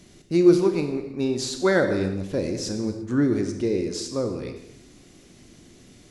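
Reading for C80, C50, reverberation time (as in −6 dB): 9.0 dB, 7.5 dB, non-exponential decay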